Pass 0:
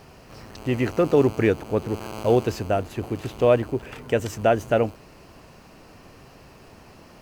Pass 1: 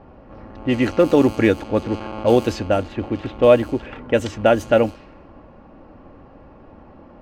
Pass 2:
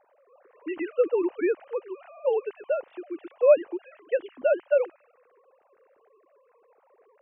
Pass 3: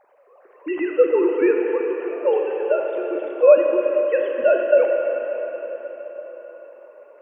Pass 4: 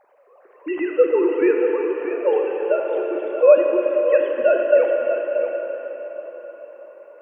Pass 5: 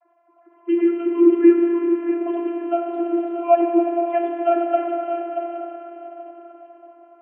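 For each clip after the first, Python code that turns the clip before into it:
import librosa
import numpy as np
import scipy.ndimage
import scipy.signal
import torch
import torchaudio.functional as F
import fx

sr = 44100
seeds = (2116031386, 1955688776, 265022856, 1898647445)

y1 = x + 0.45 * np.pad(x, (int(3.6 * sr / 1000.0), 0))[:len(x)]
y1 = fx.env_lowpass(y1, sr, base_hz=980.0, full_db=-16.5)
y1 = fx.peak_eq(y1, sr, hz=3500.0, db=4.0, octaves=0.41)
y1 = y1 * 10.0 ** (4.0 / 20.0)
y2 = fx.sine_speech(y1, sr)
y2 = y2 * 10.0 ** (-8.0 / 20.0)
y3 = fx.rev_plate(y2, sr, seeds[0], rt60_s=4.8, hf_ratio=0.9, predelay_ms=0, drr_db=0.5)
y3 = y3 * 10.0 ** (5.5 / 20.0)
y4 = y3 + 10.0 ** (-8.5 / 20.0) * np.pad(y3, (int(633 * sr / 1000.0), 0))[:len(y3)]
y5 = fx.vocoder(y4, sr, bands=32, carrier='saw', carrier_hz=342.0)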